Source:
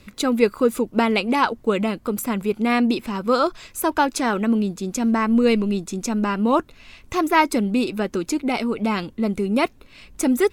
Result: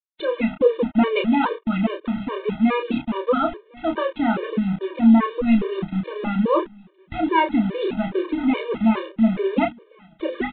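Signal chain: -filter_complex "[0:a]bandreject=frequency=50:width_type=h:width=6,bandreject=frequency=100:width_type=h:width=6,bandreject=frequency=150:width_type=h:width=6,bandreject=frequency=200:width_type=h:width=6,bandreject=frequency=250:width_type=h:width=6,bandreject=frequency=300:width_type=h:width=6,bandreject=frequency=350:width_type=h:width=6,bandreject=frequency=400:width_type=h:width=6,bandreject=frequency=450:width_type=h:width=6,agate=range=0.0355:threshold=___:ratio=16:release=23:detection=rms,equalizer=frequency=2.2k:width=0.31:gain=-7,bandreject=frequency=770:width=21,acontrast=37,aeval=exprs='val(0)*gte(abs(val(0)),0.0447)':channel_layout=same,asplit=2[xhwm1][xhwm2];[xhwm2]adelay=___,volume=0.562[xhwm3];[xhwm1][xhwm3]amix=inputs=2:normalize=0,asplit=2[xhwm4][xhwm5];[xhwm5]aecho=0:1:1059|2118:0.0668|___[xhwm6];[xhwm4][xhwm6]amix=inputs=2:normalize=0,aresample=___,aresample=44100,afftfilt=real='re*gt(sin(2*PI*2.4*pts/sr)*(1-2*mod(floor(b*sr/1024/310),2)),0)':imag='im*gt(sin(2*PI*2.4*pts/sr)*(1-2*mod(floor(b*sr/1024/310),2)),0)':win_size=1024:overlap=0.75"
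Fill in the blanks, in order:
0.0178, 31, 0.016, 8000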